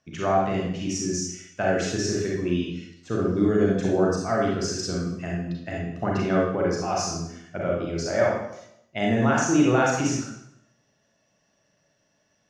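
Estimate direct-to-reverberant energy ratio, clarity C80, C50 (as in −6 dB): −3.0 dB, 4.5 dB, 0.5 dB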